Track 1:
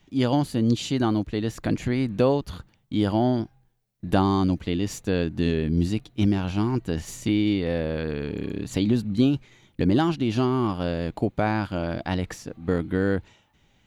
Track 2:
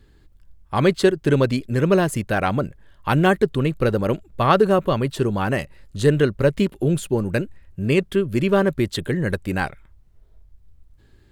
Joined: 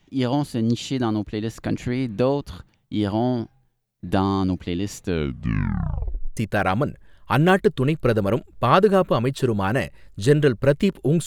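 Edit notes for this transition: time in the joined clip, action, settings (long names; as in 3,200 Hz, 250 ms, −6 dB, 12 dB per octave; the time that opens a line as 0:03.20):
track 1
0:05.04: tape stop 1.33 s
0:06.37: continue with track 2 from 0:02.14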